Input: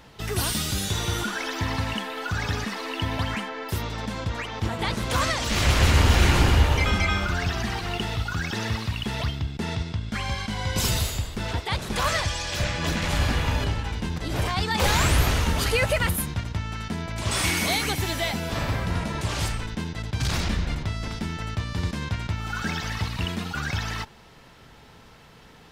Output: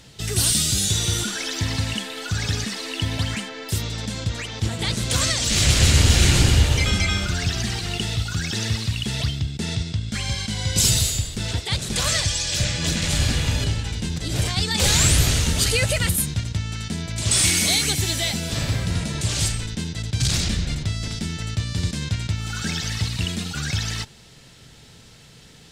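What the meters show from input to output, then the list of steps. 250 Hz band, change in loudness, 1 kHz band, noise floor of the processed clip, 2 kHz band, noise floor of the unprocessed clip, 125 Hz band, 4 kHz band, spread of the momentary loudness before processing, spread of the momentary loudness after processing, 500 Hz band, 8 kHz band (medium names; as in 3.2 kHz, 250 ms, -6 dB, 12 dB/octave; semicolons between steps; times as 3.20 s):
+2.0 dB, +4.0 dB, -5.5 dB, -47 dBFS, 0.0 dB, -50 dBFS, +3.5 dB, +6.5 dB, 10 LU, 11 LU, -1.5 dB, +10.5 dB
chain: ten-band graphic EQ 125 Hz +6 dB, 1 kHz -8 dB, 4 kHz +5 dB, 8 kHz +12 dB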